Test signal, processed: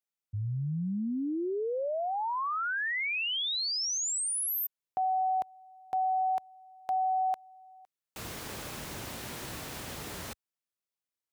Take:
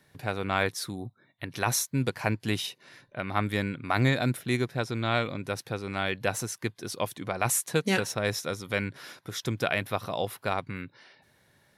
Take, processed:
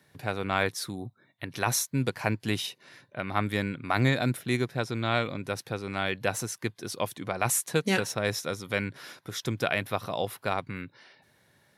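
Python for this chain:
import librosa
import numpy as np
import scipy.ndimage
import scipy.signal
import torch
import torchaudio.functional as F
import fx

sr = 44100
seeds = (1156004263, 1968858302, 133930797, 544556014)

y = scipy.signal.sosfilt(scipy.signal.butter(2, 70.0, 'highpass', fs=sr, output='sos'), x)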